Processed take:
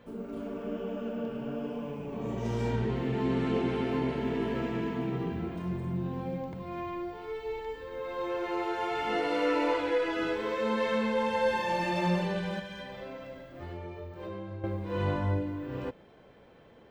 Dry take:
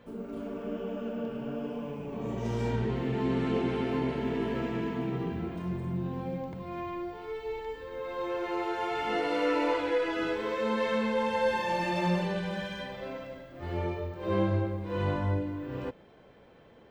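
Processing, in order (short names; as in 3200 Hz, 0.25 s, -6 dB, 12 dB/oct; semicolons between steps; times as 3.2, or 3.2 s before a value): 12.59–14.64 compressor 6:1, threshold -38 dBFS, peak gain reduction 14.5 dB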